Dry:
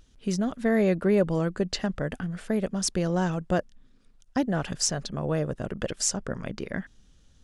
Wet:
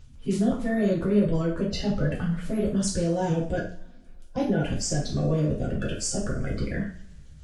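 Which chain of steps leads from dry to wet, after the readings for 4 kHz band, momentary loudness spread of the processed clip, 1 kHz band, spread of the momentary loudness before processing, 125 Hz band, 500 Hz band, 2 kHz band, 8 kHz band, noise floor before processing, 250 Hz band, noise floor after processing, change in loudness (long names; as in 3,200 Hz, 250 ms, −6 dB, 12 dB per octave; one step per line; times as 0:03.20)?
−2.5 dB, 7 LU, −1.5 dB, 11 LU, +3.5 dB, 0.0 dB, −1.5 dB, −3.0 dB, −59 dBFS, +2.0 dB, −47 dBFS, +1.0 dB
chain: spectral magnitudes quantised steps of 30 dB
low-shelf EQ 180 Hz +11 dB
brickwall limiter −18 dBFS, peak gain reduction 9 dB
coupled-rooms reverb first 0.43 s, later 1.9 s, from −26 dB, DRR −4.5 dB
level −4.5 dB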